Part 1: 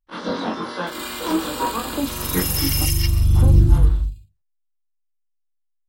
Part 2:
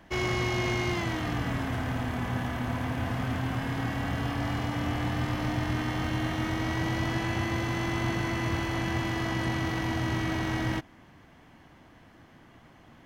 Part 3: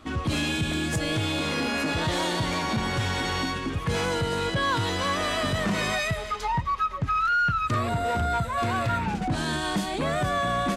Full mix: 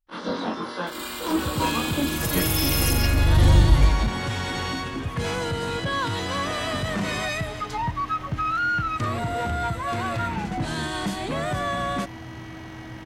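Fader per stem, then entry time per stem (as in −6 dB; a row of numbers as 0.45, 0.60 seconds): −3.0, −9.0, −1.0 decibels; 0.00, 2.25, 1.30 seconds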